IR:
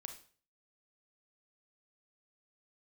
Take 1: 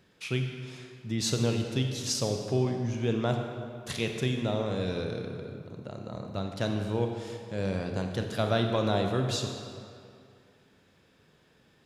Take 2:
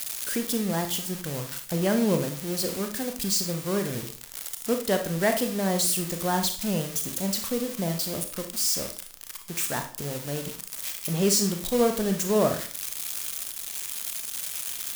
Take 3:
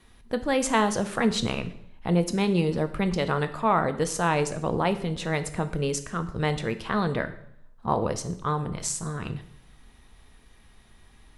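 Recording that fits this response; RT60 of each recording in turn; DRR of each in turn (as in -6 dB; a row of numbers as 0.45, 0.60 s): 2; 2.4, 0.45, 0.70 s; 3.5, 5.0, 9.0 dB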